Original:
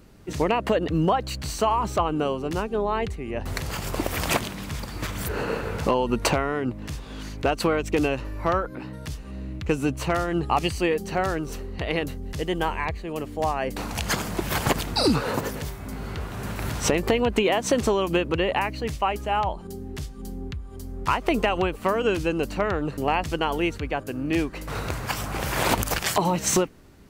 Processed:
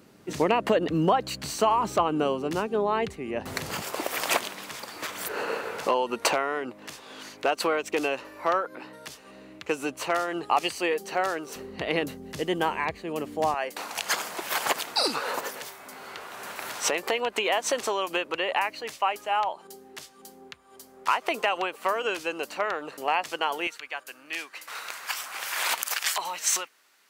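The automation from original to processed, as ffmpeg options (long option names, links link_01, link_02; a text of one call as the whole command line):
ffmpeg -i in.wav -af "asetnsamples=nb_out_samples=441:pad=0,asendcmd='3.82 highpass f 460;11.56 highpass f 200;13.54 highpass f 630;23.67 highpass f 1300',highpass=180" out.wav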